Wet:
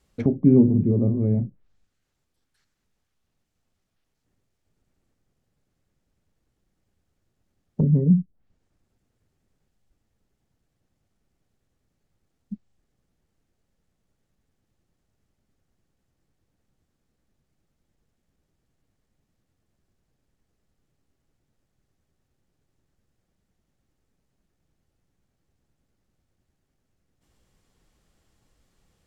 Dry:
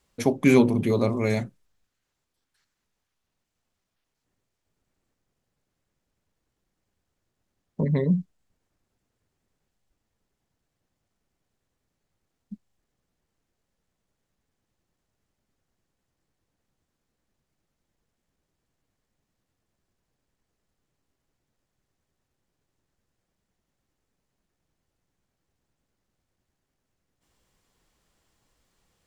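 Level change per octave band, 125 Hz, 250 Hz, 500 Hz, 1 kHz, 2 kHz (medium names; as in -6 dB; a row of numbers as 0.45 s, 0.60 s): +6.0 dB, +3.5 dB, -3.0 dB, under -15 dB, under -20 dB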